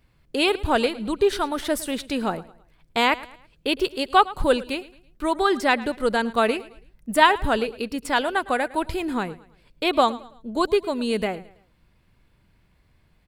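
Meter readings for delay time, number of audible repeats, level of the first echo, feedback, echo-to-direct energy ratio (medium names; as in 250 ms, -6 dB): 109 ms, 2, -19.0 dB, 38%, -18.5 dB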